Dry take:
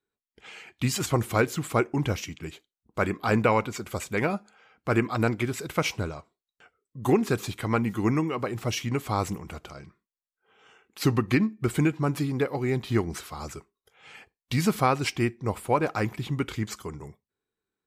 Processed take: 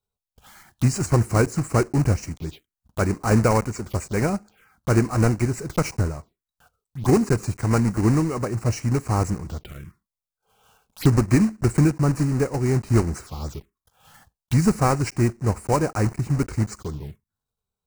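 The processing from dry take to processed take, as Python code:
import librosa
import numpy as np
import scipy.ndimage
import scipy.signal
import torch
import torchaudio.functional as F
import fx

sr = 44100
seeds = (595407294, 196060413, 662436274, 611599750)

y = fx.block_float(x, sr, bits=3)
y = fx.low_shelf(y, sr, hz=150.0, db=12.0)
y = fx.env_phaser(y, sr, low_hz=310.0, high_hz=3400.0, full_db=-25.5)
y = y * 10.0 ** (1.5 / 20.0)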